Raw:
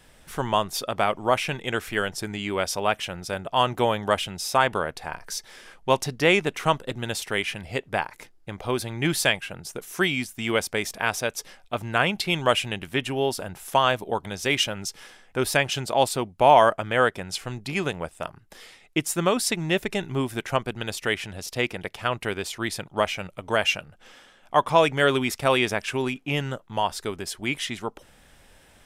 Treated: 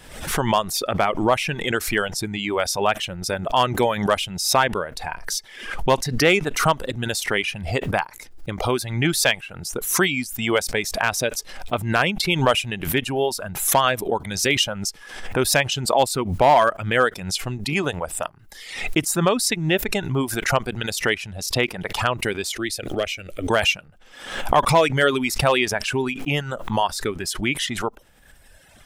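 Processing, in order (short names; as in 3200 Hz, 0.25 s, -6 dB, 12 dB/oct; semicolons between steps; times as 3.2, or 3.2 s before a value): reverb removal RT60 1.6 s; in parallel at 0 dB: compressor 12:1, threshold -32 dBFS, peak gain reduction 21.5 dB; on the sum: hard clip -9 dBFS, distortion -21 dB; 22.55–23.5 fixed phaser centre 390 Hz, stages 4; backwards sustainer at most 74 dB/s; gain +1.5 dB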